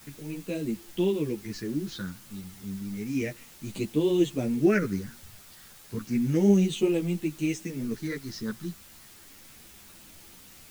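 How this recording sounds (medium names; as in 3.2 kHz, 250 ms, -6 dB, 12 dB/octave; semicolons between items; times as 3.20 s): phasing stages 6, 0.32 Hz, lowest notch 630–1500 Hz; a quantiser's noise floor 8-bit, dither triangular; a shimmering, thickened sound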